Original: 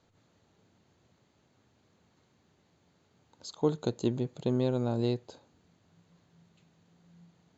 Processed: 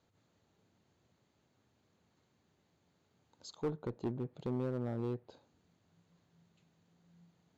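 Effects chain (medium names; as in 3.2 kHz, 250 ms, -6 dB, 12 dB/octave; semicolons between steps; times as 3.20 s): low-pass that closes with the level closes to 1.6 kHz, closed at -28.5 dBFS; one-sided clip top -24 dBFS; trim -6.5 dB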